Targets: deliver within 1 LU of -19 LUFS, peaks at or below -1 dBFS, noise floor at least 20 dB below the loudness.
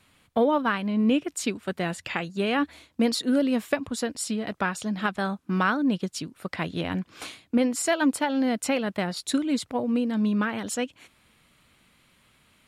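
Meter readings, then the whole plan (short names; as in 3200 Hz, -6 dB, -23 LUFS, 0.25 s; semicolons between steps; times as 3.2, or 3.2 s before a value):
loudness -26.5 LUFS; peak -11.0 dBFS; loudness target -19.0 LUFS
-> gain +7.5 dB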